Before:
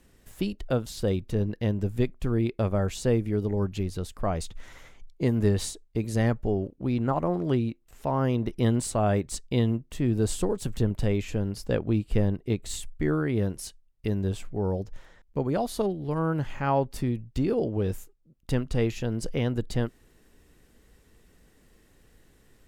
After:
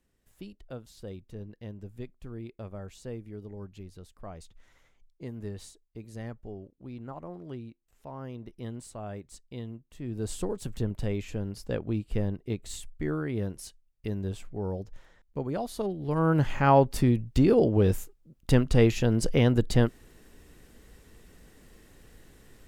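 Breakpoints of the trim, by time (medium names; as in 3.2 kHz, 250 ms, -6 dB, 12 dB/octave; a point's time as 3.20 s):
9.88 s -15 dB
10.37 s -5 dB
15.80 s -5 dB
16.40 s +5 dB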